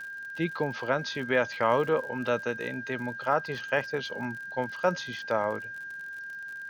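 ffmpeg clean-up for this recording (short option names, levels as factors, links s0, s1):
-af "adeclick=t=4,bandreject=f=1600:w=30,agate=range=0.0891:threshold=0.0251"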